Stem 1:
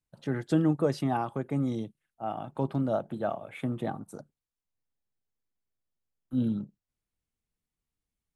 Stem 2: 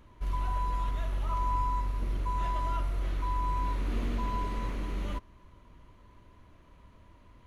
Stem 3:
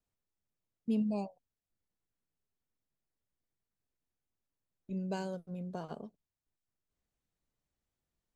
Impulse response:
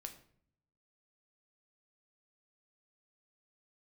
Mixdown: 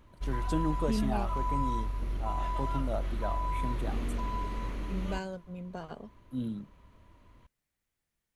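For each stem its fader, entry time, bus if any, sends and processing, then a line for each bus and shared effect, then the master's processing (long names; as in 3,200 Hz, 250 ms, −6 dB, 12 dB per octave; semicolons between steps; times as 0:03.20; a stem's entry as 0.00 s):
−7.0 dB, 0.00 s, no send, high-shelf EQ 3,700 Hz +11 dB
−2.0 dB, 0.00 s, no send, no processing
−0.5 dB, 0.00 s, no send, parametric band 2,000 Hz +8.5 dB 1.1 octaves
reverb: not used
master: no processing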